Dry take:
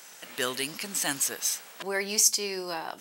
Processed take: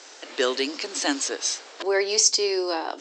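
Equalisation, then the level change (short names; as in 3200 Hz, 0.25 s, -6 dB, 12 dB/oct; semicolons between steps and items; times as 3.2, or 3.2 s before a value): Chebyshev band-pass 280–7500 Hz, order 5; tilt shelf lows +7 dB, about 910 Hz; bell 4400 Hz +8 dB 1.2 oct; +6.0 dB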